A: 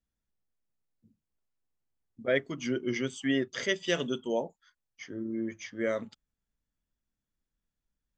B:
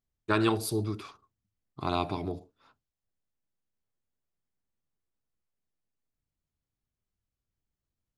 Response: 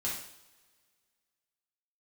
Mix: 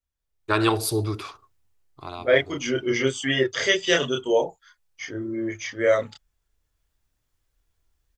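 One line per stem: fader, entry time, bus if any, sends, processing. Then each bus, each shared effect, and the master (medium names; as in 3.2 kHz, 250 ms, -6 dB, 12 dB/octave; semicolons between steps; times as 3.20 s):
+1.5 dB, 0.00 s, no send, chorus voices 4, 0.4 Hz, delay 29 ms, depth 1.5 ms
-2.5 dB, 0.20 s, no send, auto duck -16 dB, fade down 0.65 s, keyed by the first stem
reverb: none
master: peaking EQ 200 Hz -12.5 dB 0.82 oct; level rider gain up to 12 dB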